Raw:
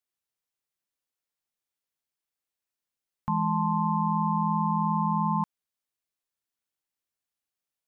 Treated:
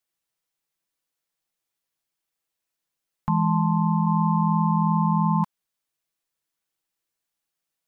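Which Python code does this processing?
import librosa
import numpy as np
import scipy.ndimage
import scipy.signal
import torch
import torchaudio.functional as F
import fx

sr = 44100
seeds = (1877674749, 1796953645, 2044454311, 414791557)

y = fx.lowpass(x, sr, hz=fx.line((3.58, 1200.0), (4.05, 1000.0)), slope=12, at=(3.58, 4.05), fade=0.02)
y = y + 0.44 * np.pad(y, (int(6.1 * sr / 1000.0), 0))[:len(y)]
y = F.gain(torch.from_numpy(y), 4.5).numpy()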